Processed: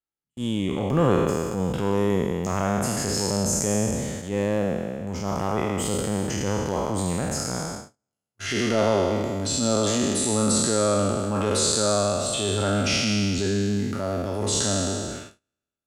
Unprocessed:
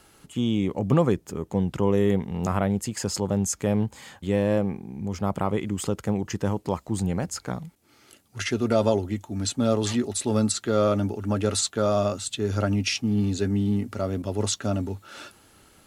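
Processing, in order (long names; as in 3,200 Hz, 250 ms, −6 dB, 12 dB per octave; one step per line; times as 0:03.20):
peak hold with a decay on every bin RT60 2.09 s
noise gate −31 dBFS, range −44 dB
transient designer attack −8 dB, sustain +1 dB
level −1.5 dB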